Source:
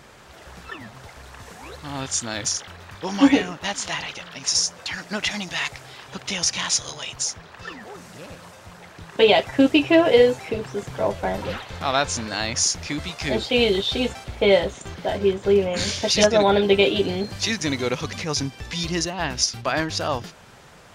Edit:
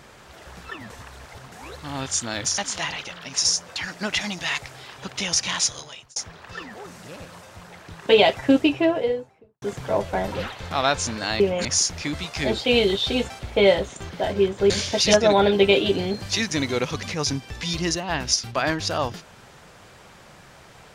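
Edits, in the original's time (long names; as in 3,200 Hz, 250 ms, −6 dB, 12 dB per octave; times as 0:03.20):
0:00.90–0:01.52: reverse
0:02.58–0:03.68: remove
0:06.71–0:07.26: fade out
0:09.41–0:10.72: fade out and dull
0:15.55–0:15.80: move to 0:12.50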